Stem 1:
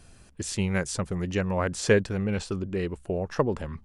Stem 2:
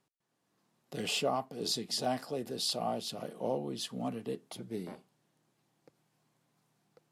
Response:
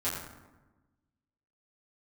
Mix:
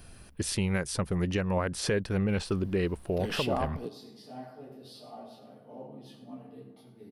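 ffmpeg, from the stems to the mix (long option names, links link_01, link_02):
-filter_complex "[0:a]alimiter=limit=-21dB:level=0:latency=1:release=262,highshelf=frequency=7900:gain=10.5,volume=2dB,asplit=2[link_01][link_02];[1:a]acompressor=mode=upward:threshold=-49dB:ratio=2.5,adynamicequalizer=threshold=0.00355:dfrequency=2700:dqfactor=0.7:tfrequency=2700:tqfactor=0.7:attack=5:release=100:ratio=0.375:range=2.5:mode=cutabove:tftype=highshelf,adelay=2250,volume=0.5dB,asplit=2[link_03][link_04];[link_04]volume=-19dB[link_05];[link_02]apad=whole_len=412913[link_06];[link_03][link_06]sidechaingate=range=-33dB:threshold=-46dB:ratio=16:detection=peak[link_07];[2:a]atrim=start_sample=2205[link_08];[link_05][link_08]afir=irnorm=-1:irlink=0[link_09];[link_01][link_07][link_09]amix=inputs=3:normalize=0,equalizer=frequency=7200:width_type=o:width=0.53:gain=-13"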